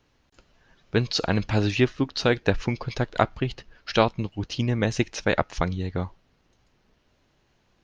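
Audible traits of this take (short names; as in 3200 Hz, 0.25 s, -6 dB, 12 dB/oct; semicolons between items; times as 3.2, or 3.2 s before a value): noise floor -67 dBFS; spectral tilt -5.0 dB/oct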